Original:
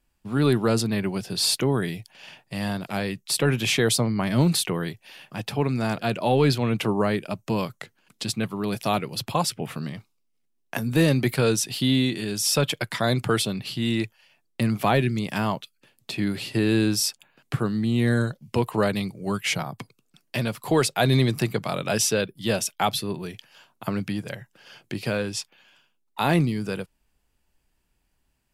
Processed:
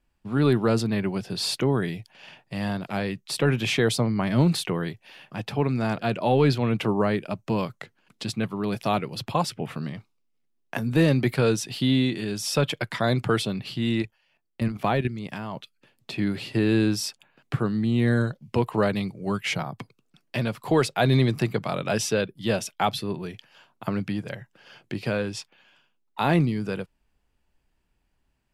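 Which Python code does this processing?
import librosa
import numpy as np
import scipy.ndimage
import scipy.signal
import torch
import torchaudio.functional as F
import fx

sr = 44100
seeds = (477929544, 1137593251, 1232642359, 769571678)

y = fx.level_steps(x, sr, step_db=11, at=(14.02, 15.56))
y = fx.high_shelf(y, sr, hz=5700.0, db=-11.5)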